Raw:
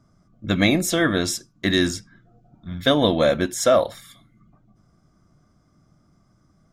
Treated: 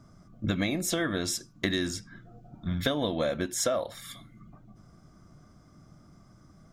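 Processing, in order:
downward compressor 6 to 1, threshold −31 dBFS, peak gain reduction 17.5 dB
level +4.5 dB

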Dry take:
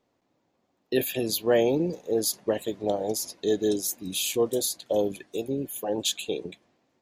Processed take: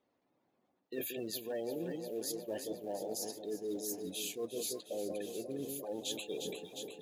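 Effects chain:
gate on every frequency bin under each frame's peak −25 dB strong
in parallel at −10 dB: floating-point word with a short mantissa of 2 bits
on the sum: flanger 1.2 Hz, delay 3.2 ms, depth 2.3 ms, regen −78%
delay that swaps between a low-pass and a high-pass 178 ms, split 870 Hz, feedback 78%, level −8 dB
reversed playback
downward compressor, threshold −33 dBFS, peak gain reduction 13 dB
reversed playback
low-shelf EQ 87 Hz −11 dB
level −3 dB

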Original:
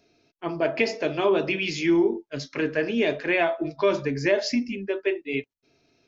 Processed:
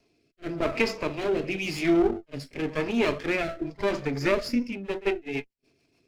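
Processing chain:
lower of the sound and its delayed copy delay 0.4 ms
rotating-speaker cabinet horn 0.9 Hz, later 7 Hz, at 0:04.26
backwards echo 46 ms −21 dB

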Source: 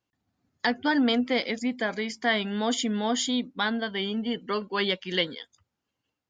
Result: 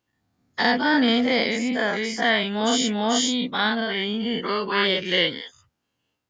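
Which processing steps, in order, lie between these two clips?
every bin's largest magnitude spread in time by 120 ms

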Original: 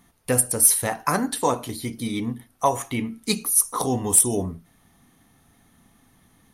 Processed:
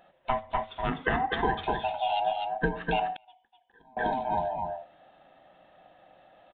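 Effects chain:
neighbouring bands swapped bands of 500 Hz
downward compressor 10 to 1, threshold −23 dBFS, peak gain reduction 13 dB
single-tap delay 250 ms −4 dB
0:03.16–0:03.97: gate with flip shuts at −26 dBFS, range −30 dB
downsampling to 8,000 Hz

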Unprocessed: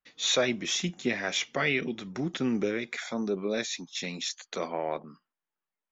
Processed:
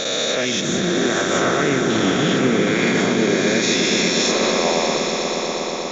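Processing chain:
peak hold with a rise ahead of every peak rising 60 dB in 2.84 s
0:00.61–0:01.90: flat-topped bell 3,400 Hz −15.5 dB
automatic gain control gain up to 13 dB
brickwall limiter −11.5 dBFS, peak gain reduction 9.5 dB
echo that builds up and dies away 120 ms, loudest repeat 5, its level −11 dB
convolution reverb RT60 2.0 s, pre-delay 51 ms, DRR 12 dB

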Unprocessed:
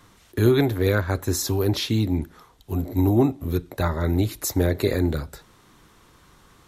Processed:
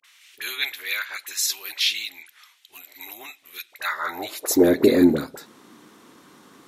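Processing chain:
all-pass dispersion highs, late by 43 ms, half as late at 980 Hz
high-pass filter sweep 2,400 Hz → 250 Hz, 0:03.76–0:04.72
level +3 dB

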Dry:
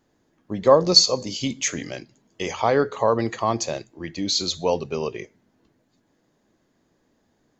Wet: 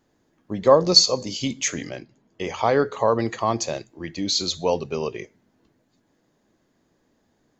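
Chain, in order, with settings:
0:01.89–0:02.54: low-pass filter 2,400 Hz 6 dB per octave

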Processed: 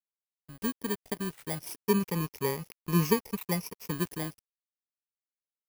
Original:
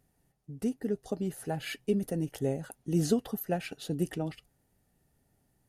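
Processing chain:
samples in bit-reversed order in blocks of 32 samples
0:01.85–0:03.91: EQ curve with evenly spaced ripples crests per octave 0.81, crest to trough 10 dB
dead-zone distortion −46.5 dBFS

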